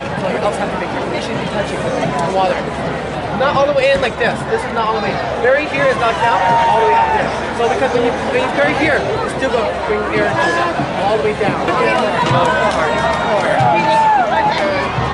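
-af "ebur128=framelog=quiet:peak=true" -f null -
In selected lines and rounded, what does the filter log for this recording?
Integrated loudness:
  I:         -15.0 LUFS
  Threshold: -25.0 LUFS
Loudness range:
  LRA:         2.7 LU
  Threshold: -34.9 LUFS
  LRA low:   -16.4 LUFS
  LRA high:  -13.7 LUFS
True peak:
  Peak:       -1.3 dBFS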